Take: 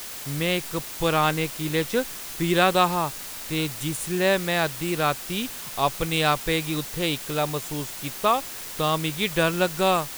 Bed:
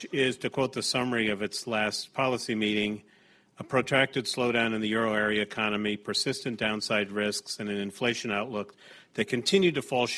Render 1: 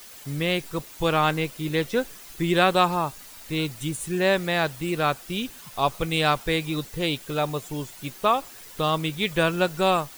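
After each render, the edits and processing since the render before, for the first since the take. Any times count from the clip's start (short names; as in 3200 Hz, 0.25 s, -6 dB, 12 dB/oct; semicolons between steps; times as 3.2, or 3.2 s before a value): denoiser 10 dB, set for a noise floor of -37 dBFS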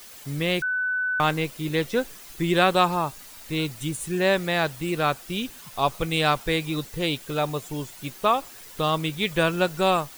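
0.62–1.2 bleep 1500 Hz -22.5 dBFS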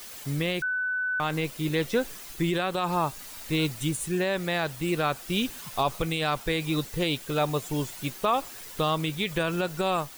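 limiter -15 dBFS, peak gain reduction 9 dB; vocal rider within 3 dB 0.5 s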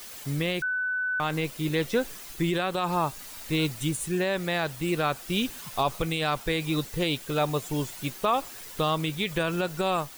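nothing audible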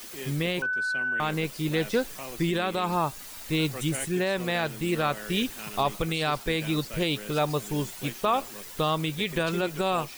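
add bed -14 dB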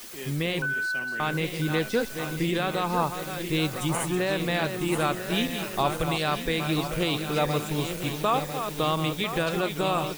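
regenerating reverse delay 0.498 s, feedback 70%, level -8 dB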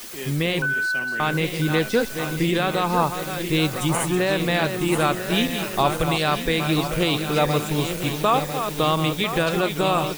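gain +5 dB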